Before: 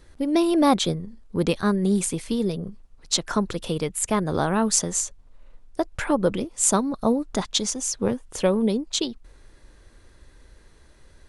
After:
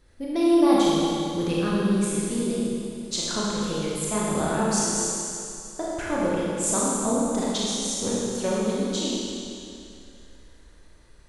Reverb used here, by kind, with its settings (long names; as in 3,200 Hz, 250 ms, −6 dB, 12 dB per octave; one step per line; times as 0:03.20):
four-comb reverb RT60 2.6 s, combs from 26 ms, DRR −6.5 dB
level −8.5 dB